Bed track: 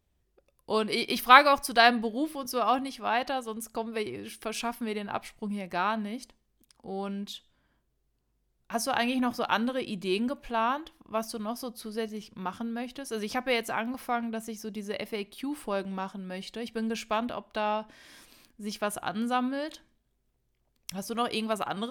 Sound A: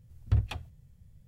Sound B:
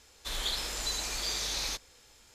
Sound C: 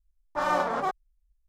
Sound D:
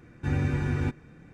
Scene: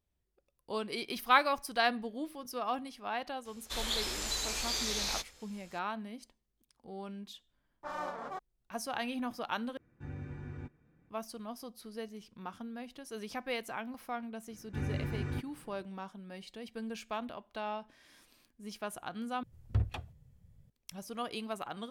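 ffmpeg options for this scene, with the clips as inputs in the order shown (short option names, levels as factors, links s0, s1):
-filter_complex "[4:a]asplit=2[s0][s1];[0:a]volume=0.355[s2];[2:a]asplit=2[s3][s4];[s4]adelay=14,volume=0.237[s5];[s3][s5]amix=inputs=2:normalize=0[s6];[s0]highshelf=f=3000:g=-9[s7];[1:a]equalizer=f=560:w=0.32:g=5.5[s8];[s2]asplit=3[s9][s10][s11];[s9]atrim=end=9.774[s12];[s7]atrim=end=1.33,asetpts=PTS-STARTPTS,volume=0.15[s13];[s10]atrim=start=11.096:end=19.434[s14];[s8]atrim=end=1.27,asetpts=PTS-STARTPTS,volume=0.501[s15];[s11]atrim=start=20.696[s16];[s6]atrim=end=2.34,asetpts=PTS-STARTPTS,volume=0.841,afade=t=in:d=0.004:c=hsin,afade=t=out:st=2.336:d=0.004:c=hsin,adelay=152145S[s17];[3:a]atrim=end=1.48,asetpts=PTS-STARTPTS,volume=0.211,afade=t=in:d=0.004:c=hsin,afade=t=out:st=1.476:d=0.004:c=hsin,adelay=7480[s18];[s1]atrim=end=1.33,asetpts=PTS-STARTPTS,volume=0.355,afade=t=in:d=0.004:c=hsin,afade=t=out:st=1.326:d=0.004:c=hsin,adelay=14500[s19];[s12][s13]acrossfade=d=0.004:c1=hsin:c2=hsin[s20];[s20][s14]acrossfade=d=0.004:c1=hsin:c2=hsin[s21];[s21][s15]acrossfade=d=0.004:c1=hsin:c2=hsin[s22];[s22][s16]acrossfade=d=0.004:c1=hsin:c2=hsin[s23];[s23][s17][s18][s19]amix=inputs=4:normalize=0"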